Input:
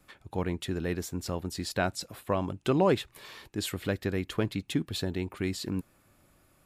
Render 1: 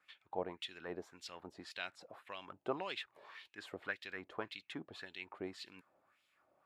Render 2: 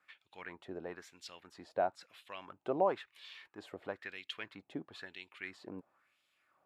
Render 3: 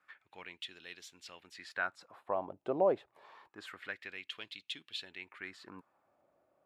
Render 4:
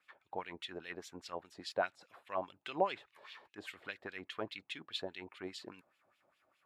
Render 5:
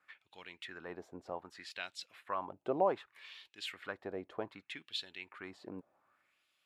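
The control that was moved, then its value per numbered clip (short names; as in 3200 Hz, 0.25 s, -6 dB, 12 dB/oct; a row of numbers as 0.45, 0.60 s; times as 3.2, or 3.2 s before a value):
wah, rate: 1.8, 1, 0.27, 4.9, 0.65 Hz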